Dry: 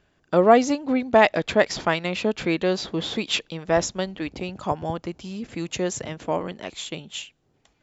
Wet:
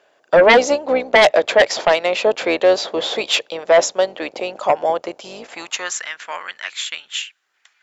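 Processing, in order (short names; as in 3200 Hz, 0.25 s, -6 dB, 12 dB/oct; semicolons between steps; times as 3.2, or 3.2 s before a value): octaver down 2 oct, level +2 dB; high-pass sweep 570 Hz -> 1600 Hz, 5.31–6.03; sine folder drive 10 dB, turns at 1 dBFS; gain -7 dB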